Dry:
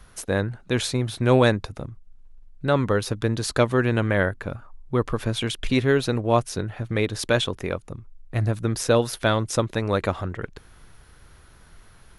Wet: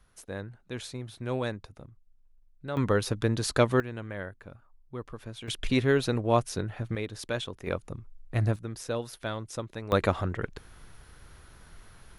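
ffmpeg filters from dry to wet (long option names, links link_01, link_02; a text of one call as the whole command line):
ffmpeg -i in.wav -af "asetnsamples=nb_out_samples=441:pad=0,asendcmd='2.77 volume volume -3dB;3.8 volume volume -16dB;5.48 volume volume -4dB;6.95 volume volume -11dB;7.67 volume volume -3dB;8.56 volume volume -13dB;9.92 volume volume -1dB',volume=-14dB" out.wav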